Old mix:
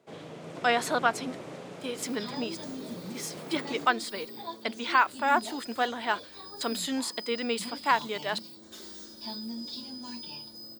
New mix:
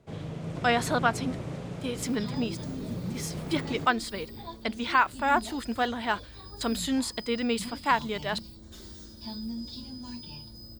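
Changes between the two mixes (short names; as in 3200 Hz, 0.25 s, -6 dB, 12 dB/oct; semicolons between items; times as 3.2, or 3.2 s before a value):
second sound -3.5 dB; master: remove HPF 300 Hz 12 dB/oct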